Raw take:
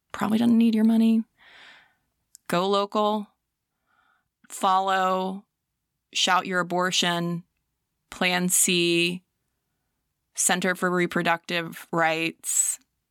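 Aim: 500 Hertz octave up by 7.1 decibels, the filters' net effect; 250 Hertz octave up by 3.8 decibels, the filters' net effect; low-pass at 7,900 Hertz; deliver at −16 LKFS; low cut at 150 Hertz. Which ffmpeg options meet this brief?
ffmpeg -i in.wav -af "highpass=150,lowpass=7900,equalizer=frequency=250:width_type=o:gain=3.5,equalizer=frequency=500:width_type=o:gain=8.5,volume=4.5dB" out.wav

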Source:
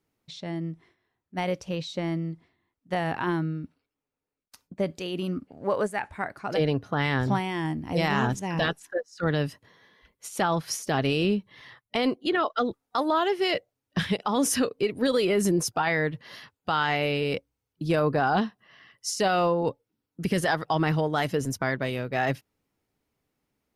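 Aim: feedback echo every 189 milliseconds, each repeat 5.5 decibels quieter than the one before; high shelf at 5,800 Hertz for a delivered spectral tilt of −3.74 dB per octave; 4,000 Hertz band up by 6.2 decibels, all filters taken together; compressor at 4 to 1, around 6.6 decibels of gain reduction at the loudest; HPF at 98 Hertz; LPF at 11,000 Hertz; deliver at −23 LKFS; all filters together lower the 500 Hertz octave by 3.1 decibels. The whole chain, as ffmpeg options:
ffmpeg -i in.wav -af "highpass=98,lowpass=11000,equalizer=frequency=500:width_type=o:gain=-4,equalizer=frequency=4000:width_type=o:gain=6.5,highshelf=frequency=5800:gain=6,acompressor=threshold=-28dB:ratio=4,aecho=1:1:189|378|567|756|945|1134|1323:0.531|0.281|0.149|0.079|0.0419|0.0222|0.0118,volume=8.5dB" out.wav

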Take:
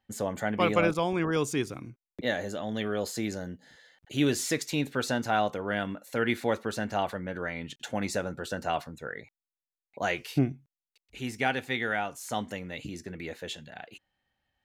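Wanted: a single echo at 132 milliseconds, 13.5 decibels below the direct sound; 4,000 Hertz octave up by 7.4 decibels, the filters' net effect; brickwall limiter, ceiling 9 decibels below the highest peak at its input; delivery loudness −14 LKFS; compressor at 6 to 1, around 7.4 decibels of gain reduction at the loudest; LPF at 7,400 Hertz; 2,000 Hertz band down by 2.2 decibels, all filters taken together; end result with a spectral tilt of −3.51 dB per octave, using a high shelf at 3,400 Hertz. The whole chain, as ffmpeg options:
ffmpeg -i in.wav -af "lowpass=7400,equalizer=frequency=2000:width_type=o:gain=-7,highshelf=frequency=3400:gain=7.5,equalizer=frequency=4000:width_type=o:gain=7,acompressor=threshold=-27dB:ratio=6,alimiter=level_in=0.5dB:limit=-24dB:level=0:latency=1,volume=-0.5dB,aecho=1:1:132:0.211,volume=22dB" out.wav

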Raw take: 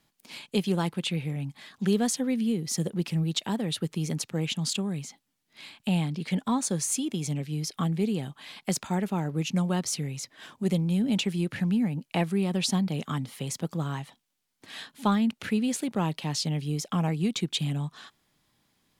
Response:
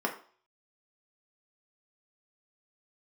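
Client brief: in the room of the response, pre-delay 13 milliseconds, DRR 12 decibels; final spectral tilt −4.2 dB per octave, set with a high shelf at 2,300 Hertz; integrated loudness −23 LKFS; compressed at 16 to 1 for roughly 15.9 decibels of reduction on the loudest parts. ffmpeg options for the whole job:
-filter_complex "[0:a]highshelf=frequency=2300:gain=3.5,acompressor=threshold=-36dB:ratio=16,asplit=2[link_01][link_02];[1:a]atrim=start_sample=2205,adelay=13[link_03];[link_02][link_03]afir=irnorm=-1:irlink=0,volume=-20.5dB[link_04];[link_01][link_04]amix=inputs=2:normalize=0,volume=17dB"

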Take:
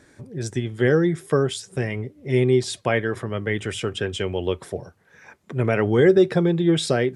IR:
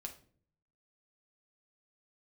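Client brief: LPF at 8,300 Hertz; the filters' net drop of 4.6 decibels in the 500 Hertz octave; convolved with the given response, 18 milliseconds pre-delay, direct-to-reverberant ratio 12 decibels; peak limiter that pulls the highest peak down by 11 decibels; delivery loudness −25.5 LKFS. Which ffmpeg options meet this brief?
-filter_complex "[0:a]lowpass=8300,equalizer=frequency=500:width_type=o:gain=-6.5,alimiter=limit=-20dB:level=0:latency=1,asplit=2[link_01][link_02];[1:a]atrim=start_sample=2205,adelay=18[link_03];[link_02][link_03]afir=irnorm=-1:irlink=0,volume=-8.5dB[link_04];[link_01][link_04]amix=inputs=2:normalize=0,volume=4dB"

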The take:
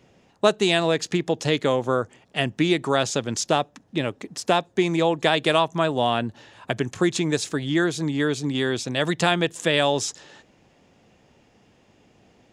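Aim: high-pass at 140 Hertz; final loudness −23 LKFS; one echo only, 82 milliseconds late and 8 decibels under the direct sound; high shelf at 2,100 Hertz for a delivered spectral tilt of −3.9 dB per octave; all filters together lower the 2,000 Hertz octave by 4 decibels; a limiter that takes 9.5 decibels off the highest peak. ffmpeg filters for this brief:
ffmpeg -i in.wav -af "highpass=140,equalizer=frequency=2000:width_type=o:gain=-7.5,highshelf=frequency=2100:gain=3.5,alimiter=limit=-13.5dB:level=0:latency=1,aecho=1:1:82:0.398,volume=2.5dB" out.wav

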